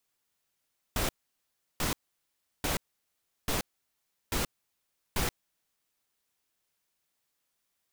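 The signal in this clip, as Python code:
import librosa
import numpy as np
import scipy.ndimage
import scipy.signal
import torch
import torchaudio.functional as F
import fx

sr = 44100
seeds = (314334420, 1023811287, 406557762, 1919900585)

y = fx.noise_burst(sr, seeds[0], colour='pink', on_s=0.13, off_s=0.71, bursts=6, level_db=-29.5)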